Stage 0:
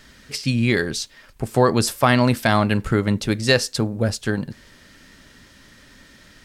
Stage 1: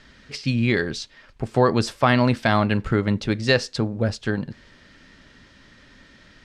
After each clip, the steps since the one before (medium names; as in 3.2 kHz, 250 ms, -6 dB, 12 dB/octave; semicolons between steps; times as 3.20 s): low-pass 4.7 kHz 12 dB/octave; trim -1.5 dB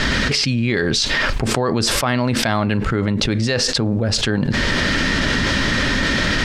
level flattener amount 100%; trim -4 dB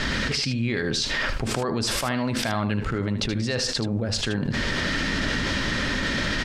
delay 77 ms -10 dB; trim -7.5 dB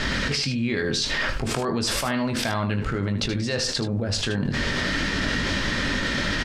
doubling 21 ms -8.5 dB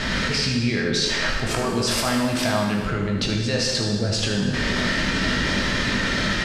gated-style reverb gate 470 ms falling, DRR 0.5 dB